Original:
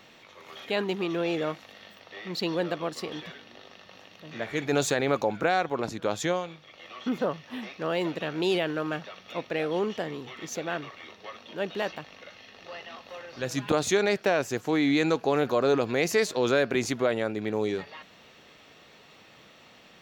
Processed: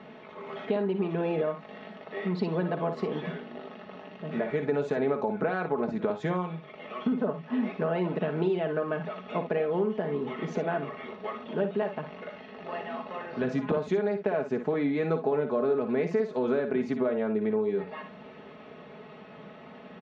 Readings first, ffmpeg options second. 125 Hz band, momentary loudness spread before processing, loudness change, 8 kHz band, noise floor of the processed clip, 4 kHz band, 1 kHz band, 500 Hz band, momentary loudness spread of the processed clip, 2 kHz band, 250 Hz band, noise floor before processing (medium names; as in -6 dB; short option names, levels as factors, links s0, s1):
+2.0 dB, 19 LU, -1.5 dB, under -20 dB, -48 dBFS, -13.5 dB, -2.5 dB, 0.0 dB, 17 LU, -6.5 dB, 0.0 dB, -54 dBFS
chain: -filter_complex "[0:a]tiltshelf=f=1400:g=6.5,aecho=1:1:4.7:0.71,acompressor=threshold=0.0355:ratio=5,highpass=100,lowpass=2500,asplit=2[s0][s1];[s1]aecho=0:1:55|67:0.335|0.168[s2];[s0][s2]amix=inputs=2:normalize=0,volume=1.41"